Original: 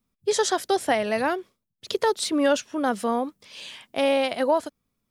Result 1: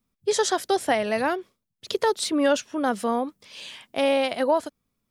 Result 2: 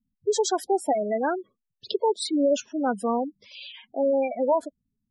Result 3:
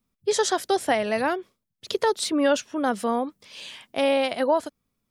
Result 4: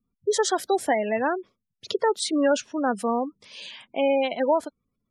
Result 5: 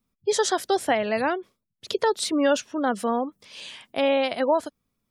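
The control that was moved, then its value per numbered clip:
spectral gate, under each frame's peak: -60 dB, -10 dB, -50 dB, -20 dB, -35 dB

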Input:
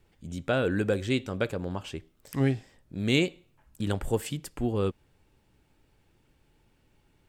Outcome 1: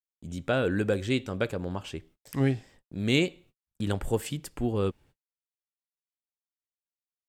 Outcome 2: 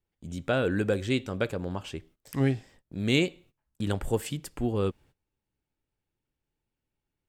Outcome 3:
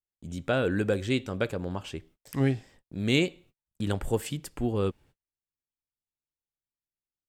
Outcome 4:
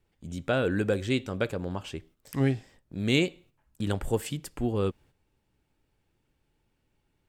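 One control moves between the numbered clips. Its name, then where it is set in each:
gate, range: -58 dB, -20 dB, -40 dB, -8 dB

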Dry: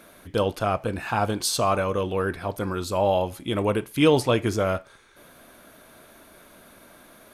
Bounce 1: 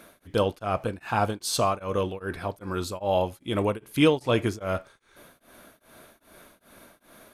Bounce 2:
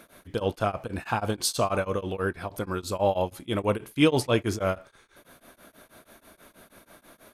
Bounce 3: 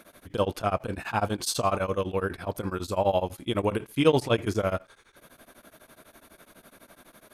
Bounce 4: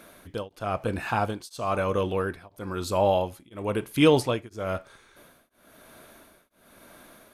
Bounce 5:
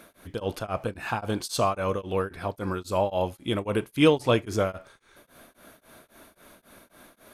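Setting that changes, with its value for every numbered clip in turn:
tremolo of two beating tones, nulls at: 2.5 Hz, 6.2 Hz, 12 Hz, 1 Hz, 3.7 Hz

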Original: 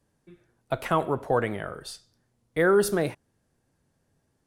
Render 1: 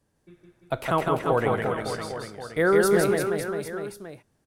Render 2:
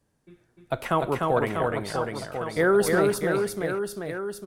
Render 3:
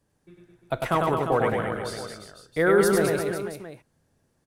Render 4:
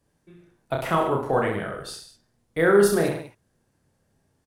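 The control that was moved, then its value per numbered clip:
reverse bouncing-ball echo, first gap: 160 ms, 300 ms, 100 ms, 30 ms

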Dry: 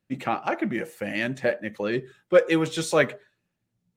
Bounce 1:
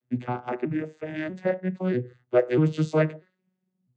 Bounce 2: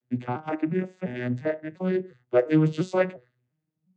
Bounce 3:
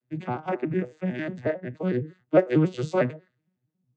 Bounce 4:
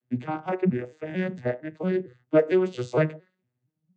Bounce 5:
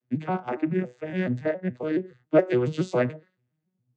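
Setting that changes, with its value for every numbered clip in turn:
vocoder on a broken chord, a note every: 642 ms, 350 ms, 91 ms, 228 ms, 140 ms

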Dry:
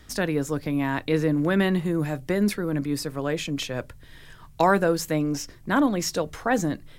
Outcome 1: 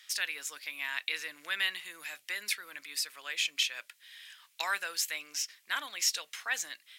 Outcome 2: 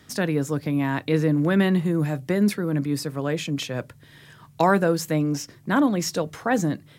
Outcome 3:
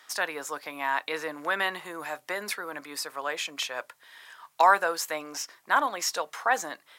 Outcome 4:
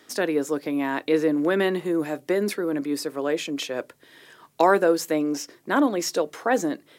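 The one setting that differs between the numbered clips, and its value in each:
resonant high-pass, frequency: 2.5 kHz, 130 Hz, 920 Hz, 350 Hz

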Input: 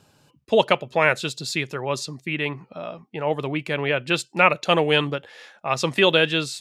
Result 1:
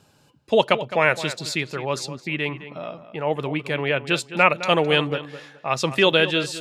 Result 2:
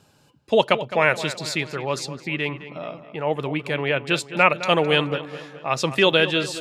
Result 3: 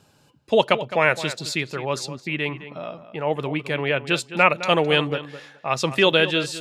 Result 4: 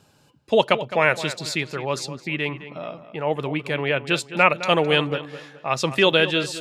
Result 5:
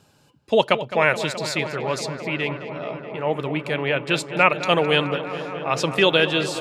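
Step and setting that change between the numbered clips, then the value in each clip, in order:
filtered feedback delay, feedback: 23%, 52%, 15%, 34%, 91%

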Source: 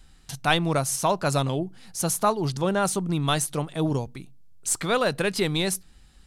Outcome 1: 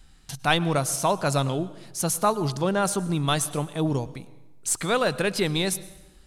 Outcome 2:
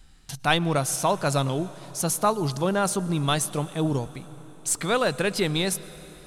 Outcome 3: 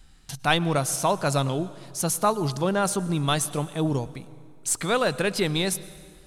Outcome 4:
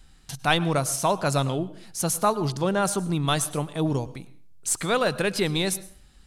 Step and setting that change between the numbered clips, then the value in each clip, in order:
plate-style reverb, RT60: 1.1 s, 5.3 s, 2.2 s, 0.5 s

